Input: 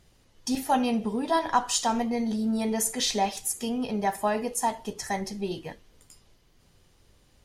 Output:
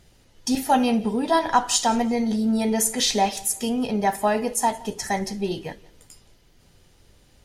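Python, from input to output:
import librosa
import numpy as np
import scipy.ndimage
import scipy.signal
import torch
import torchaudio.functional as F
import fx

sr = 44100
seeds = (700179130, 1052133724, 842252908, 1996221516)

y = fx.notch(x, sr, hz=1100.0, q=9.4)
y = fx.echo_feedback(y, sr, ms=173, feedback_pct=33, wet_db=-23.0)
y = y * 10.0 ** (5.0 / 20.0)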